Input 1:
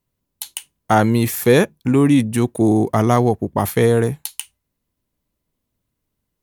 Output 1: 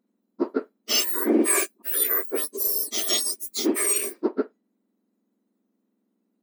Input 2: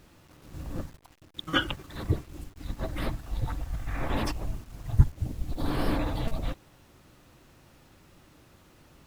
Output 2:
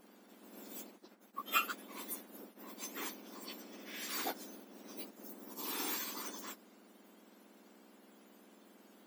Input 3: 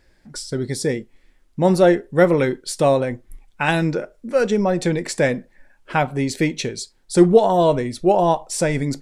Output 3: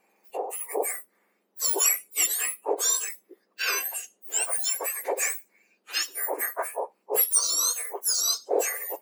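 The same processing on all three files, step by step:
spectrum inverted on a logarithmic axis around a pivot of 2 kHz; trim -2.5 dB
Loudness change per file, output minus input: -6.5 LU, -9.5 LU, -6.5 LU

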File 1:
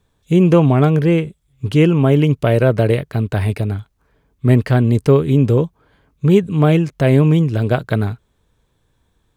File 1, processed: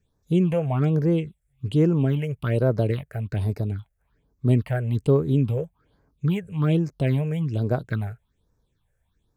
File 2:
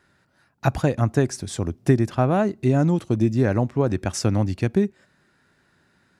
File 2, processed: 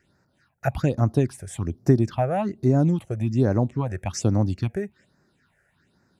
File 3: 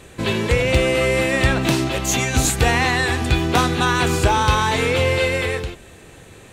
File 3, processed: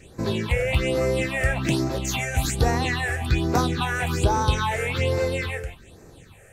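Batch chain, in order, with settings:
phase shifter stages 6, 1.2 Hz, lowest notch 260–3100 Hz; normalise loudness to -24 LUFS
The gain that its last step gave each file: -8.0 dB, -1.0 dB, -3.5 dB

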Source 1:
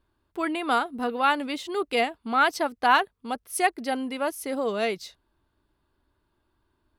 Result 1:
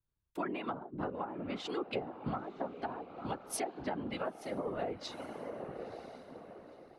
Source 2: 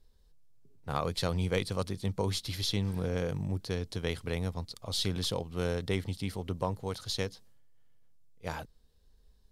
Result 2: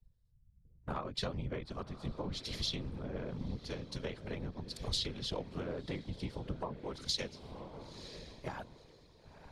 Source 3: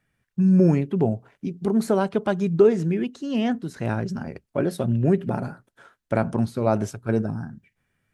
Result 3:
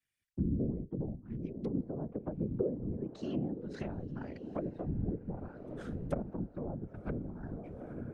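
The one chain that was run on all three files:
low-pass that closes with the level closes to 390 Hz, closed at -19 dBFS; echo that smears into a reverb 971 ms, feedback 41%, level -13 dB; compression 4:1, threshold -40 dBFS; whisper effect; three bands expanded up and down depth 70%; trim +2.5 dB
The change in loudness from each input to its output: -14.0 LU, -6.5 LU, -15.5 LU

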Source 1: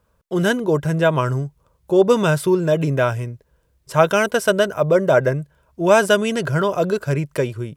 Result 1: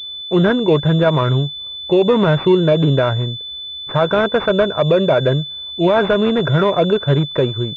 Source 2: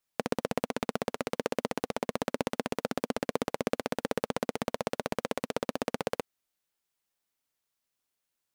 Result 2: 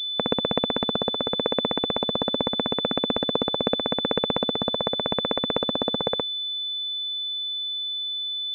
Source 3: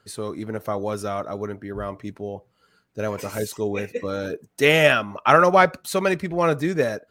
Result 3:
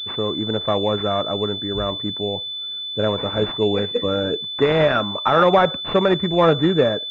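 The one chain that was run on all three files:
peak limiter -11 dBFS; class-D stage that switches slowly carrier 3.5 kHz; trim +6 dB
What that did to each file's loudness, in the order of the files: +3.0 LU, +9.0 LU, +2.0 LU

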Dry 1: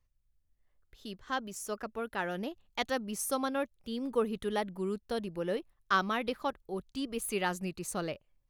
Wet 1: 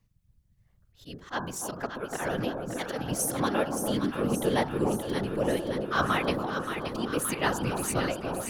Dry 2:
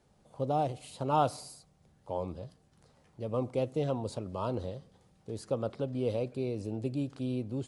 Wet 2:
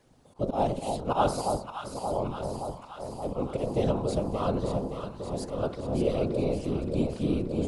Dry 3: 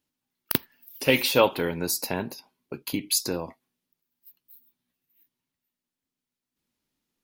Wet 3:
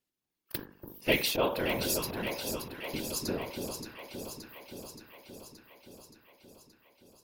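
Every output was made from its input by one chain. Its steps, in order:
de-hum 49.55 Hz, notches 35; slow attack 103 ms; whisper effect; on a send: echo whose repeats swap between lows and highs 287 ms, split 1 kHz, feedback 81%, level -5 dB; on the sum: peak normalisation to -12 dBFS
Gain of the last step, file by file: +6.0 dB, +5.5 dB, -4.5 dB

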